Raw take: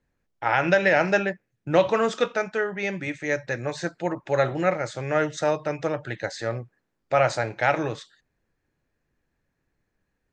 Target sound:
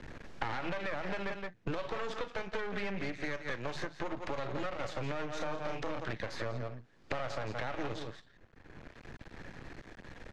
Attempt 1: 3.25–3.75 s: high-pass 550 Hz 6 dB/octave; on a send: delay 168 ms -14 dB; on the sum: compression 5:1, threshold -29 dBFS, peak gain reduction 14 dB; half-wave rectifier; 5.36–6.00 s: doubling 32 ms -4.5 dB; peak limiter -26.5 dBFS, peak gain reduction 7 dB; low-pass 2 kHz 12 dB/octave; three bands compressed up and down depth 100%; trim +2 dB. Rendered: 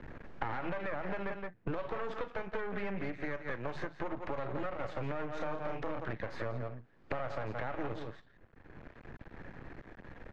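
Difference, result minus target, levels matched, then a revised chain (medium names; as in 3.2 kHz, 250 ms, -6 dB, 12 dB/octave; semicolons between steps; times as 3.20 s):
4 kHz band -8.0 dB
3.25–3.75 s: high-pass 550 Hz 6 dB/octave; on a send: delay 168 ms -14 dB; on the sum: compression 5:1, threshold -29 dBFS, peak gain reduction 14 dB; half-wave rectifier; 5.36–6.00 s: doubling 32 ms -4.5 dB; peak limiter -26.5 dBFS, peak gain reduction 7 dB; low-pass 4.8 kHz 12 dB/octave; three bands compressed up and down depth 100%; trim +2 dB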